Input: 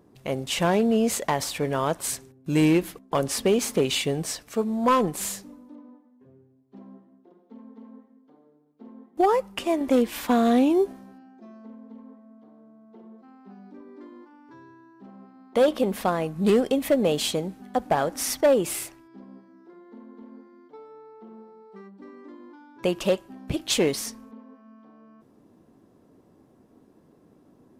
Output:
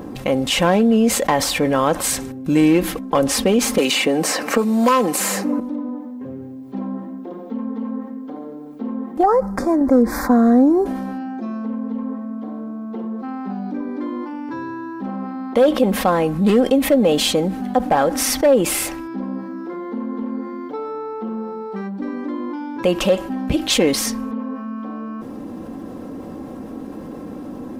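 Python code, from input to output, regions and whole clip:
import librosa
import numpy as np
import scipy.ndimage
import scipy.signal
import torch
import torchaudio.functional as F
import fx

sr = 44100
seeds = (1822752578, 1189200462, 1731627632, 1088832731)

y = fx.chain(x, sr, fx.highpass(hz=260.0, slope=12),
    fx.peak_eq(hz=3400.0, db=-6.5, octaves=0.22),
    fx.band_squash(depth_pct=100), at=(3.78, 5.6))
y = fx.chain(y, sr, fx.cheby1_bandstop(low_hz=1600.0, high_hz=5100.0, order=2),
    fx.bass_treble(bass_db=4, treble_db=-7), at=(9.23, 10.86))
y = fx.peak_eq(y, sr, hz=9800.0, db=-5.5, octaves=2.6)
y = y + 0.47 * np.pad(y, (int(3.8 * sr / 1000.0), 0))[:len(y)]
y = fx.env_flatten(y, sr, amount_pct=50)
y = y * 10.0 ** (2.0 / 20.0)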